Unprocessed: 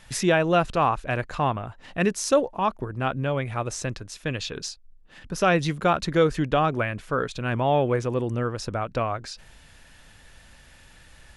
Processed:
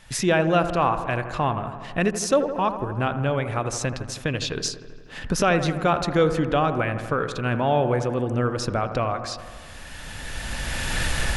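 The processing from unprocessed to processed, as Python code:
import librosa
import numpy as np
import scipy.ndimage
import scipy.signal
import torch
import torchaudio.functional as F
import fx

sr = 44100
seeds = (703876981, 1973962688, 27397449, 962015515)

y = fx.recorder_agc(x, sr, target_db=-14.5, rise_db_per_s=13.0, max_gain_db=30)
y = fx.echo_wet_lowpass(y, sr, ms=81, feedback_pct=72, hz=1700.0, wet_db=-10.0)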